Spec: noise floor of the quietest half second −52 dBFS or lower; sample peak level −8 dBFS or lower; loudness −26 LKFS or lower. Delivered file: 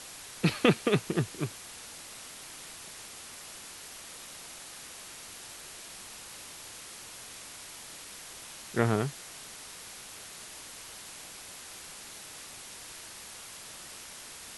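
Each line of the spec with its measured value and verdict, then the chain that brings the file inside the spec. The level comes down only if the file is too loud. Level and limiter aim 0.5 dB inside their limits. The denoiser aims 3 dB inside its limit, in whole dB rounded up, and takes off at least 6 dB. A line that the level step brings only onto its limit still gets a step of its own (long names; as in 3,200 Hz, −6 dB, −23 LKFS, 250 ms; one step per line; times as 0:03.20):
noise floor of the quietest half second −46 dBFS: out of spec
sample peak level −9.5 dBFS: in spec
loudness −36.5 LKFS: in spec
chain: broadband denoise 9 dB, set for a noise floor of −46 dBFS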